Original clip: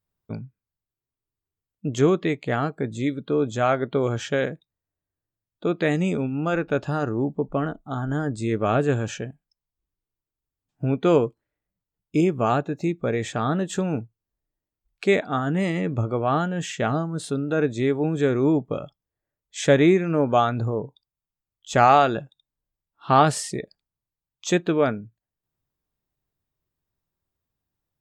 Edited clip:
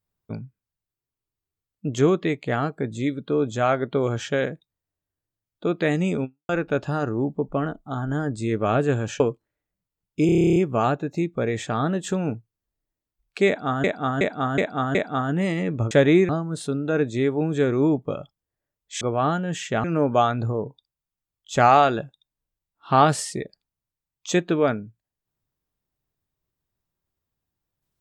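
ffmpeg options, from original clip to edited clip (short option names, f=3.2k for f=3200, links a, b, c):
-filter_complex "[0:a]asplit=21[a][b][c][d][e][f][g][h][i][j][k][l][m][n][o][p][q][r][s][t][u];[a]atrim=end=6.49,asetpts=PTS-STARTPTS,afade=t=out:st=6.24:d=0.25:c=exp[v];[b]atrim=start=6.49:end=9.202,asetpts=PTS-STARTPTS,afade=t=in:d=0.004:c=hsin[w];[c]atrim=start=11.158:end=12.252[x];[d]atrim=start=12.218:end=12.252[y];[e]atrim=start=12.218:end=12.252[z];[f]atrim=start=12.218:end=12.252[aa];[g]atrim=start=12.218:end=12.252[ab];[h]atrim=start=12.218:end=12.252[ac];[i]atrim=start=12.218:end=12.252[ad];[j]atrim=start=12.218:end=12.252[ae];[k]atrim=start=12.218:end=12.252[af];[l]atrim=start=12.218:end=12.252[ag];[m]atrim=start=12.218:end=15.502[ah];[n]atrim=start=15.128:end=15.502[ai];[o]atrim=start=15.128:end=15.502[aj];[p]atrim=start=15.128:end=15.502[ak];[q]atrim=start=15.128:end=16.092[al];[r]atrim=start=19.638:end=20.022[am];[s]atrim=start=16.918:end=19.642[an];[t]atrim=start=16.088:end=16.922[ao];[u]atrim=start=20.018[ap];[v][w]concat=n=2:v=0:a=1[aq];[aq][x]acrossfade=d=0.004:c1=hsin:c2=hsin[ar];[ar][y]acrossfade=d=0.004:c1=hsin:c2=hsin[as];[as][z]acrossfade=d=0.004:c1=hsin:c2=hsin[at];[at][aa]acrossfade=d=0.004:c1=hsin:c2=hsin[au];[au][ab]acrossfade=d=0.004:c1=hsin:c2=hsin[av];[av][ac]acrossfade=d=0.004:c1=hsin:c2=hsin[aw];[aw][ad]acrossfade=d=0.004:c1=hsin:c2=hsin[ax];[ax][ae]acrossfade=d=0.004:c1=hsin:c2=hsin[ay];[ay][af]acrossfade=d=0.004:c1=hsin:c2=hsin[az];[az][ag]acrossfade=d=0.004:c1=hsin:c2=hsin[ba];[ba][ah]acrossfade=d=0.004:c1=hsin:c2=hsin[bb];[bb][ai]acrossfade=d=0.004:c1=hsin:c2=hsin[bc];[bc][aj]acrossfade=d=0.004:c1=hsin:c2=hsin[bd];[bd][ak]acrossfade=d=0.004:c1=hsin:c2=hsin[be];[be][al]acrossfade=d=0.004:c1=hsin:c2=hsin[bf];[bf][am]acrossfade=d=0.004:c1=hsin:c2=hsin[bg];[bg][an]acrossfade=d=0.004:c1=hsin:c2=hsin[bh];[bh][ao]acrossfade=d=0.004:c1=hsin:c2=hsin[bi];[bi][ap]acrossfade=d=0.004:c1=hsin:c2=hsin"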